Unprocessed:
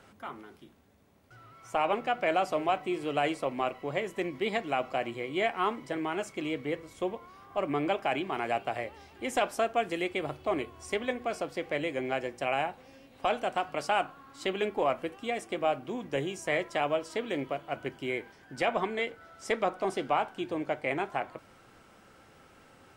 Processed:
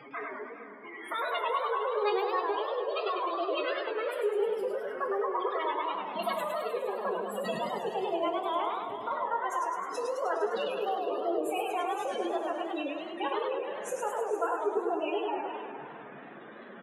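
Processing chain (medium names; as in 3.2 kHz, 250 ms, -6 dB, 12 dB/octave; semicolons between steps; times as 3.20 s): gliding tape speed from 157% -> 116%; high-pass 97 Hz 12 dB/octave; treble shelf 3 kHz -4 dB; in parallel at +1 dB: peak limiter -27 dBFS, peak gain reduction 11.5 dB; on the sum: compression 2:1, threshold -39 dBFS, peak gain reduction 10 dB; formant-preserving pitch shift +11 st; spectral gate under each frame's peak -15 dB strong; feedback delay 459 ms, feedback 18%, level -13.5 dB; on a send at -2.5 dB: reverberation, pre-delay 3 ms; on the sum: modulated delay 103 ms, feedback 67%, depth 171 cents, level -4 dB; trim +2 dB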